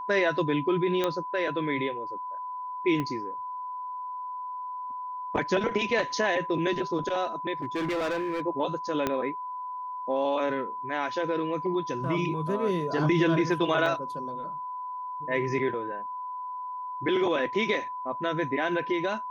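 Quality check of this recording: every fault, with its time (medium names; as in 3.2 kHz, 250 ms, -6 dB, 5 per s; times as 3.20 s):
whine 1 kHz -33 dBFS
1.04 s: pop -13 dBFS
3.00 s: pop -18 dBFS
7.53–8.41 s: clipped -26 dBFS
9.07 s: pop -12 dBFS
13.86 s: dropout 2.6 ms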